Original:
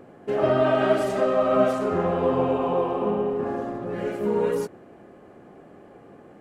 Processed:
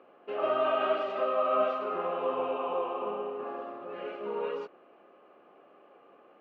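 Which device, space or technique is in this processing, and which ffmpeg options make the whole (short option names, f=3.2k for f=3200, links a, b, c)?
phone earpiece: -af "highpass=410,equalizer=f=560:t=q:w=4:g=3,equalizer=f=1.2k:t=q:w=4:g=9,equalizer=f=1.8k:t=q:w=4:g=-4,equalizer=f=2.7k:t=q:w=4:g=9,lowpass=f=3.9k:w=0.5412,lowpass=f=3.9k:w=1.3066,volume=-8.5dB"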